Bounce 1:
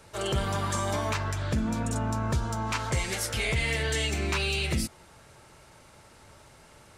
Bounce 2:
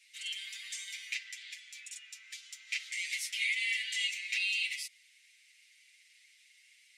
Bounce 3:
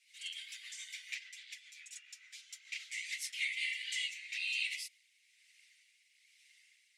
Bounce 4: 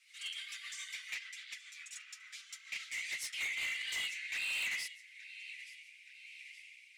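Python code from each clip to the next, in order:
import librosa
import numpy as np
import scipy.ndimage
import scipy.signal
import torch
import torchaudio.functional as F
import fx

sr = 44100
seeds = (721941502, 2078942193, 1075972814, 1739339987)

y1 = scipy.signal.sosfilt(scipy.signal.cheby1(6, 1.0, 2000.0, 'highpass', fs=sr, output='sos'), x)
y1 = fx.tilt_eq(y1, sr, slope=-4.0)
y1 = y1 + 0.84 * np.pad(y1, (int(7.0 * sr / 1000.0), 0))[:len(y1)]
y1 = F.gain(torch.from_numpy(y1), 3.0).numpy()
y2 = fx.rotary_switch(y1, sr, hz=7.0, then_hz=1.1, switch_at_s=3.16)
y2 = fx.flanger_cancel(y2, sr, hz=1.7, depth_ms=7.9)
y2 = F.gain(torch.from_numpy(y2), 1.0).numpy()
y3 = fx.filter_sweep_highpass(y2, sr, from_hz=1200.0, to_hz=2400.0, start_s=3.66, end_s=5.58, q=6.9)
y3 = fx.echo_feedback(y3, sr, ms=873, feedback_pct=44, wet_db=-19.5)
y3 = 10.0 ** (-35.0 / 20.0) * np.tanh(y3 / 10.0 ** (-35.0 / 20.0))
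y3 = F.gain(torch.from_numpy(y3), 1.5).numpy()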